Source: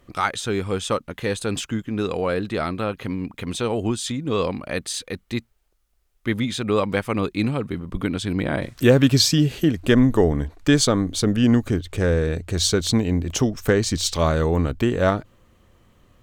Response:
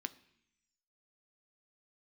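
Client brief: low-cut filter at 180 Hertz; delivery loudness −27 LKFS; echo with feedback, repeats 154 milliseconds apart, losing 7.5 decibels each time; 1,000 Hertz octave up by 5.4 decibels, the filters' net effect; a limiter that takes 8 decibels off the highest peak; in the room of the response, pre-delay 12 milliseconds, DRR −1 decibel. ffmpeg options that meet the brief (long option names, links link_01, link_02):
-filter_complex "[0:a]highpass=180,equalizer=frequency=1000:width_type=o:gain=7,alimiter=limit=-8dB:level=0:latency=1,aecho=1:1:154|308|462|616|770:0.422|0.177|0.0744|0.0312|0.0131,asplit=2[link_01][link_02];[1:a]atrim=start_sample=2205,adelay=12[link_03];[link_02][link_03]afir=irnorm=-1:irlink=0,volume=2.5dB[link_04];[link_01][link_04]amix=inputs=2:normalize=0,volume=-8dB"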